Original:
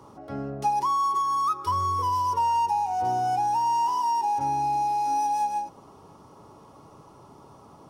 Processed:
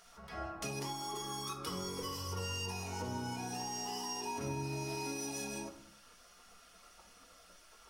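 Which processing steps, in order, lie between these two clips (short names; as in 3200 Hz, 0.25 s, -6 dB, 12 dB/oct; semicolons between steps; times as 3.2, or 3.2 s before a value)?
spectral gate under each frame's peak -15 dB weak; compressor 4:1, threshold -42 dBFS, peak gain reduction 8 dB; shoebox room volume 470 m³, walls furnished, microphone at 1.6 m; gain +3 dB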